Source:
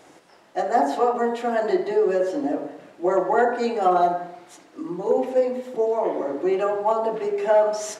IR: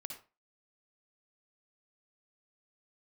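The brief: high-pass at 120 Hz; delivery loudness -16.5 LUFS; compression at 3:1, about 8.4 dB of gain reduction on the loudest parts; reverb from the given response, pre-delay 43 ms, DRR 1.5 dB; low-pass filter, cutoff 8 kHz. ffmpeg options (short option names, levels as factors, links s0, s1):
-filter_complex "[0:a]highpass=120,lowpass=8000,acompressor=threshold=0.0501:ratio=3,asplit=2[s0][s1];[1:a]atrim=start_sample=2205,adelay=43[s2];[s1][s2]afir=irnorm=-1:irlink=0,volume=1.19[s3];[s0][s3]amix=inputs=2:normalize=0,volume=3.35"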